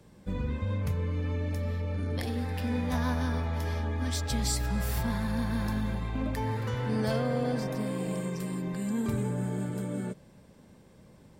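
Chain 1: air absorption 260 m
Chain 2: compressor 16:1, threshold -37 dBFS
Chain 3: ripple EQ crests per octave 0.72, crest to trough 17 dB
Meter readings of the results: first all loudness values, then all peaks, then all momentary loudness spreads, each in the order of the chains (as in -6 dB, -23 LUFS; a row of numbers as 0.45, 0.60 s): -32.0, -41.5, -30.0 LUFS; -18.5, -28.0, -12.0 dBFS; 4, 3, 9 LU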